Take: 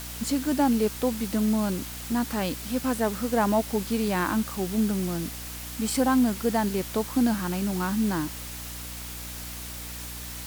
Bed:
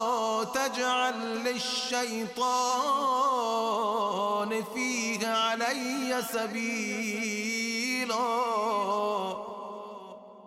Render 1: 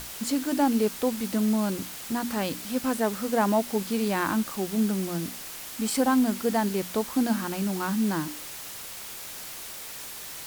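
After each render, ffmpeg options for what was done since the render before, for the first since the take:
-af "bandreject=f=60:t=h:w=6,bandreject=f=120:t=h:w=6,bandreject=f=180:t=h:w=6,bandreject=f=240:t=h:w=6,bandreject=f=300:t=h:w=6"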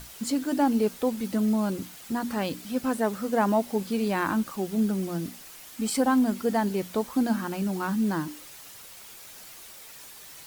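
-af "afftdn=nr=8:nf=-40"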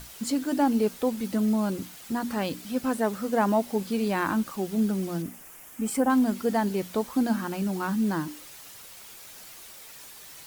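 -filter_complex "[0:a]asettb=1/sr,asplit=3[a][b][c];[a]atrim=end=5.224[d];[b]atrim=start=5.22:end=6.1,asetpts=PTS-STARTPTS,afade=t=in:d=0.004:c=qsin,afade=t=out:st=0.876:d=0.004:c=qsin,equalizer=f=4.2k:t=o:w=0.84:g=-13.5[e];[c]atrim=start=6.096[f];[d][e]acrossfade=d=0.004:c1=hsin:c2=qsin[g];[g][f]acrossfade=d=0.004:c1=qsin:c2=hsin"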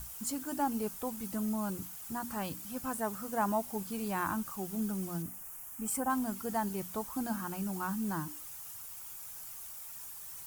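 -af "equalizer=f=250:t=o:w=1:g=-10,equalizer=f=500:t=o:w=1:g=-11,equalizer=f=2k:t=o:w=1:g=-8,equalizer=f=4k:t=o:w=1:g=-11,equalizer=f=16k:t=o:w=1:g=3"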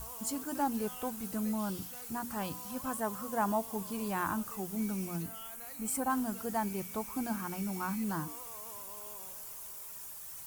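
-filter_complex "[1:a]volume=-24dB[a];[0:a][a]amix=inputs=2:normalize=0"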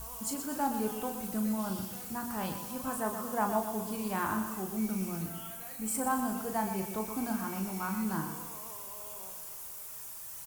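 -filter_complex "[0:a]asplit=2[a][b];[b]adelay=37,volume=-6.5dB[c];[a][c]amix=inputs=2:normalize=0,aecho=1:1:123|246|369|492|615:0.376|0.177|0.083|0.039|0.0183"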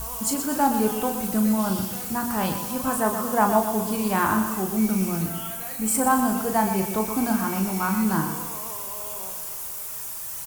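-af "volume=10.5dB"

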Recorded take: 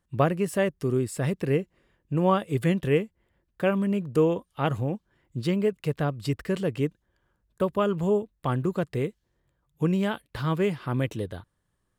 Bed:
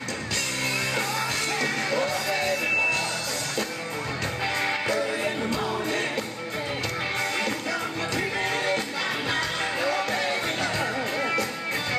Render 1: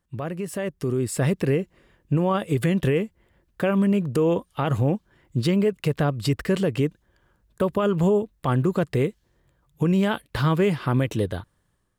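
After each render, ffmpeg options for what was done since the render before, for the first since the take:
-af "alimiter=limit=-21.5dB:level=0:latency=1:release=89,dynaudnorm=f=610:g=3:m=8dB"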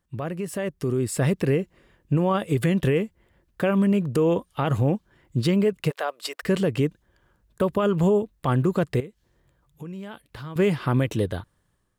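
-filter_complex "[0:a]asplit=3[a][b][c];[a]afade=t=out:st=5.89:d=0.02[d];[b]highpass=f=530:w=0.5412,highpass=f=530:w=1.3066,afade=t=in:st=5.89:d=0.02,afade=t=out:st=6.42:d=0.02[e];[c]afade=t=in:st=6.42:d=0.02[f];[d][e][f]amix=inputs=3:normalize=0,asettb=1/sr,asplit=3[g][h][i];[g]atrim=end=9.004[j];[h]atrim=start=9:end=10.56,asetpts=PTS-STARTPTS,afade=t=in:d=0.004:c=qsin,afade=t=out:st=1.556:d=0.004:c=qsin,acompressor=threshold=-47dB:ratio=2:attack=3.2:release=140:knee=1:detection=peak[k];[i]atrim=start=10.556[l];[j][k]acrossfade=d=0.004:c1=hsin:c2=qsin[m];[m][l]acrossfade=d=0.004:c1=qsin:c2=hsin"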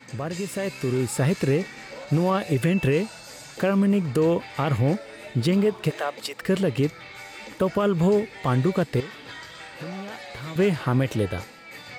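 -filter_complex "[1:a]volume=-14dB[a];[0:a][a]amix=inputs=2:normalize=0"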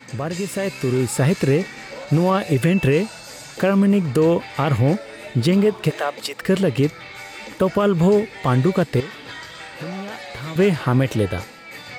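-af "volume=4.5dB"

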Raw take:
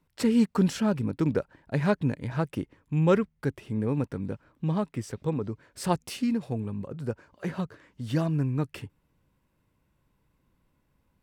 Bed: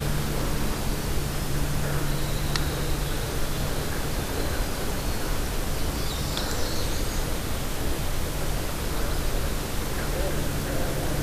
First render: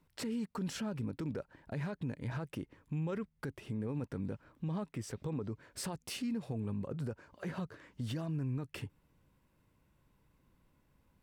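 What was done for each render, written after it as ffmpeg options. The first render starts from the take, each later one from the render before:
-af "acompressor=threshold=-36dB:ratio=2,alimiter=level_in=6.5dB:limit=-24dB:level=0:latency=1:release=30,volume=-6.5dB"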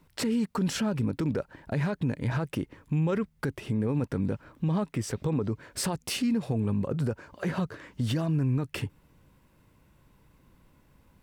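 -af "volume=10dB"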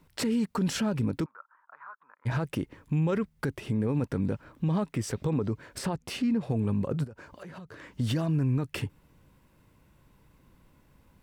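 -filter_complex "[0:a]asplit=3[a][b][c];[a]afade=t=out:st=1.24:d=0.02[d];[b]asuperpass=centerf=1200:order=4:qfactor=3.1,afade=t=in:st=1.24:d=0.02,afade=t=out:st=2.25:d=0.02[e];[c]afade=t=in:st=2.25:d=0.02[f];[d][e][f]amix=inputs=3:normalize=0,asettb=1/sr,asplit=3[g][h][i];[g]atrim=end=5.784[j];[h]atrim=start=5.78:end=6.5,asetpts=PTS-STARTPTS,afade=t=in:d=0.004:c=qsin,afade=t=out:st=0.716:d=0.004:c=qsin,highshelf=f=4k:g=-11.5[k];[i]atrim=start=6.496[l];[j][k]acrossfade=d=0.004:c1=hsin:c2=qsin[m];[m][l]acrossfade=d=0.004:c1=qsin:c2=hsin,asplit=3[n][o][p];[n]afade=t=out:st=7.03:d=0.02[q];[o]acompressor=threshold=-40dB:ratio=16:attack=3.2:release=140:knee=1:detection=peak,afade=t=in:st=7.03:d=0.02,afade=t=out:st=7.79:d=0.02[r];[p]afade=t=in:st=7.79:d=0.02[s];[q][r][s]amix=inputs=3:normalize=0"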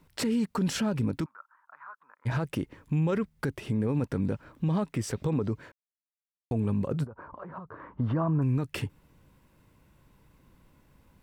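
-filter_complex "[0:a]asettb=1/sr,asplit=3[a][b][c];[a]atrim=end=1.144[d];[b]atrim=start=1.14:end=1.88,asetpts=PTS-STARTPTS,afade=t=in:d=0.004:c=qsin,afade=t=out:st=0.736:d=0.004:c=qsin,equalizer=f=460:w=2.9:g=-9[e];[c]atrim=start=1.876[f];[d][e]acrossfade=d=0.004:c1=hsin:c2=qsin[g];[g][f]acrossfade=d=0.004:c1=qsin:c2=hsin,asplit=3[h][i][j];[h]afade=t=out:st=7.05:d=0.02[k];[i]lowpass=f=1.1k:t=q:w=3.4,afade=t=in:st=7.05:d=0.02,afade=t=out:st=8.41:d=0.02[l];[j]afade=t=in:st=8.41:d=0.02[m];[k][l][m]amix=inputs=3:normalize=0,asplit=3[n][o][p];[n]atrim=end=5.72,asetpts=PTS-STARTPTS,afade=t=out:st=5.716:d=0.004:c=hsin[q];[o]atrim=start=5.72:end=6.51,asetpts=PTS-STARTPTS,volume=0[r];[p]atrim=start=6.51,asetpts=PTS-STARTPTS,afade=t=in:d=0.004:c=hsin[s];[q][r][s]concat=n=3:v=0:a=1"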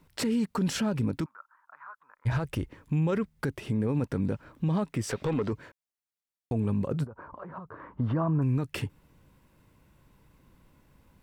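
-filter_complex "[0:a]asplit=3[a][b][c];[a]afade=t=out:st=1.87:d=0.02[d];[b]asubboost=boost=8.5:cutoff=78,afade=t=in:st=1.87:d=0.02,afade=t=out:st=2.67:d=0.02[e];[c]afade=t=in:st=2.67:d=0.02[f];[d][e][f]amix=inputs=3:normalize=0,asettb=1/sr,asplit=3[g][h][i];[g]atrim=end=5.094[j];[h]atrim=start=5.09:end=5.53,asetpts=PTS-STARTPTS,afade=t=in:d=0.004:c=qsin,afade=t=out:st=0.436:d=0.004:c=qsin,asplit=2[k][l];[l]highpass=f=720:p=1,volume=15dB,asoftclip=type=tanh:threshold=-20dB[m];[k][m]amix=inputs=2:normalize=0,lowpass=f=4k:p=1,volume=-6dB[n];[i]atrim=start=5.526[o];[j][n]acrossfade=d=0.004:c1=hsin:c2=qsin[p];[p][o]acrossfade=d=0.004:c1=qsin:c2=hsin"

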